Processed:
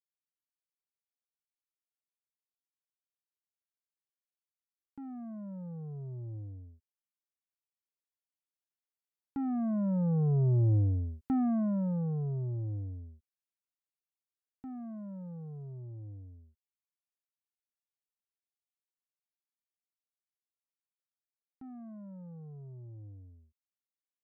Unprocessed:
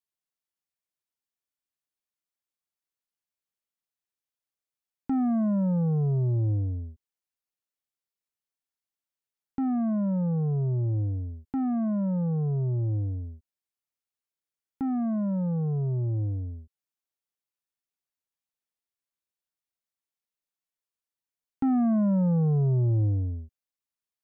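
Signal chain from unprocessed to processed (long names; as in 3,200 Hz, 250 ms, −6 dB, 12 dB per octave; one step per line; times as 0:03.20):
source passing by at 0:10.79, 8 m/s, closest 4.9 metres
level +1.5 dB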